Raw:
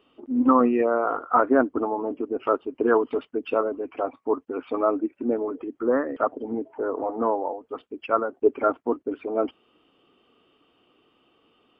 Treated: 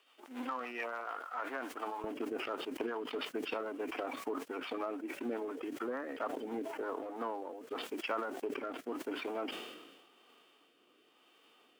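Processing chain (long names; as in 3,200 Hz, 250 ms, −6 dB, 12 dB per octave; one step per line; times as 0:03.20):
spectral envelope flattened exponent 0.6
high-pass filter 800 Hz 12 dB per octave, from 0:02.04 340 Hz
downward compressor 10 to 1, threshold −34 dBFS, peak gain reduction 19 dB
rotating-speaker cabinet horn 7 Hz, later 0.9 Hz, at 0:06.46
level that may fall only so fast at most 42 dB per second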